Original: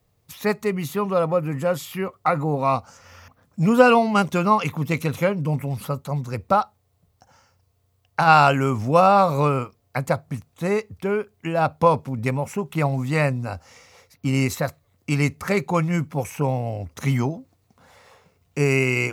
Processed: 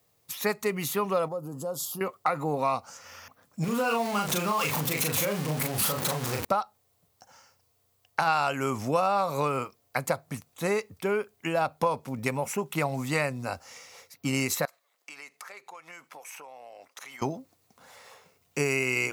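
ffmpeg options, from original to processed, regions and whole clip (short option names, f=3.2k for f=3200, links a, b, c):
-filter_complex "[0:a]asettb=1/sr,asplit=3[a][b][c];[a]atrim=end=1.284[d];[b]atrim=start=1.28:end=2.01,asetpts=PTS-STARTPTS,afade=t=in:d=0.004:c=qsin,afade=t=out:st=0.726:d=0.004:c=qsin,asuperstop=centerf=2100:order=4:qfactor=0.66,acompressor=threshold=-30dB:ratio=3:attack=3.2:release=140:knee=1:detection=peak[e];[c]atrim=start=2.006[f];[d][e]acrossfade=d=0.004:c1=hsin:c2=qsin[g];[g][f]acrossfade=d=0.004:c1=qsin:c2=hsin,asettb=1/sr,asplit=3[h][i][j];[h]atrim=end=3.644[k];[i]atrim=start=3.64:end=6.45,asetpts=PTS-STARTPTS,afade=t=in:d=0.004:c=qsin,afade=t=out:st=2.806:d=0.004:c=qsin,aeval=exprs='val(0)+0.5*0.0631*sgn(val(0))':c=same,acompressor=threshold=-23dB:ratio=4:attack=3.2:release=140:knee=1:detection=peak,asplit=2[l][m];[m]adelay=39,volume=-3.5dB[n];[l][n]amix=inputs=2:normalize=0,atrim=end_sample=123921[o];[j]atrim=start=6.446[p];[k][o]acrossfade=d=0.004:c1=hsin:c2=qsin[q];[q][p]acrossfade=d=0.004:c1=qsin:c2=hsin,asettb=1/sr,asplit=3[r][s][t];[r]atrim=end=14.654[u];[s]atrim=start=14.65:end=17.22,asetpts=PTS-STARTPTS,afade=t=in:d=0.004:c=qsin,afade=t=out:st=2.566:d=0.004:c=qsin,highpass=740,highshelf=f=5.8k:g=-8,acompressor=threshold=-41dB:ratio=12:attack=3.2:release=140:knee=1:detection=peak[v];[t]atrim=start=17.216[w];[u][v]acrossfade=d=0.004:c1=hsin:c2=qsin[x];[x][w]acrossfade=d=0.004:c1=qsin:c2=hsin,highpass=f=340:p=1,highshelf=f=5k:g=6.5,acompressor=threshold=-23dB:ratio=4"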